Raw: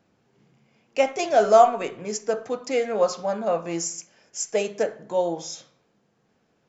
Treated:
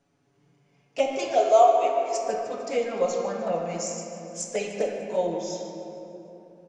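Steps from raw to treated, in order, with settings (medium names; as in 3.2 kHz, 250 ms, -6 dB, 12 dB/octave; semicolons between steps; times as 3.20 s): 1.32–2.18 s: high-pass 440 Hz 24 dB/octave; 4.56–5.17 s: comb 4 ms, depth 37%; touch-sensitive flanger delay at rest 7.2 ms, full sweep at -18.5 dBFS; feedback delay 150 ms, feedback 57%, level -16 dB; simulated room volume 160 m³, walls hard, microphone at 0.37 m; trim -2 dB; MP2 128 kbps 24 kHz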